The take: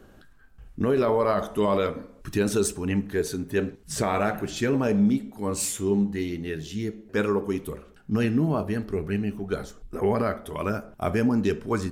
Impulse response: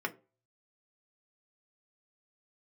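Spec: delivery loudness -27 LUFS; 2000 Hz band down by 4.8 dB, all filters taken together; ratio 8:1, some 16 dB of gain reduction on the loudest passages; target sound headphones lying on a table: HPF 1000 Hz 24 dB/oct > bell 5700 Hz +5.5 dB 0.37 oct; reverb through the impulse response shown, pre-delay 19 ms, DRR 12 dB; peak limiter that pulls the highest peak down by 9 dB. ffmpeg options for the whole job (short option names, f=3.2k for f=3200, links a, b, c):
-filter_complex "[0:a]equalizer=f=2k:t=o:g=-6.5,acompressor=threshold=-36dB:ratio=8,alimiter=level_in=10dB:limit=-24dB:level=0:latency=1,volume=-10dB,asplit=2[a][b];[1:a]atrim=start_sample=2205,adelay=19[c];[b][c]afir=irnorm=-1:irlink=0,volume=-17dB[d];[a][d]amix=inputs=2:normalize=0,highpass=f=1k:w=0.5412,highpass=f=1k:w=1.3066,equalizer=f=5.7k:t=o:w=0.37:g=5.5,volume=23dB"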